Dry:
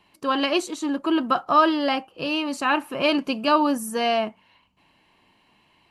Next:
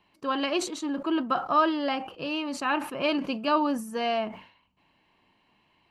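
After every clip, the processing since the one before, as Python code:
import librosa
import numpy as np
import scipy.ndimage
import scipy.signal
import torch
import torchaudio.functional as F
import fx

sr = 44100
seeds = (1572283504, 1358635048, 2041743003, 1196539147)

y = fx.peak_eq(x, sr, hz=11000.0, db=-9.5, octaves=1.4)
y = fx.sustainer(y, sr, db_per_s=110.0)
y = F.gain(torch.from_numpy(y), -5.0).numpy()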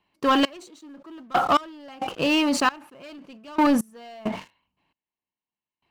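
y = fx.leveller(x, sr, passes=3)
y = fx.step_gate(y, sr, bpm=67, pattern='xx....x..x', floor_db=-24.0, edge_ms=4.5)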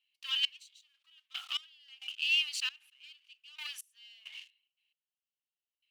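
y = fx.ladder_highpass(x, sr, hz=2600.0, resonance_pct=60)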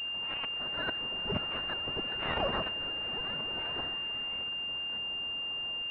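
y = x + 0.5 * 10.0 ** (-40.5 / 20.0) * np.sign(x)
y = fx.echo_pitch(y, sr, ms=559, semitones=5, count=2, db_per_echo=-3.0)
y = fx.pwm(y, sr, carrier_hz=2800.0)
y = F.gain(torch.from_numpy(y), 3.5).numpy()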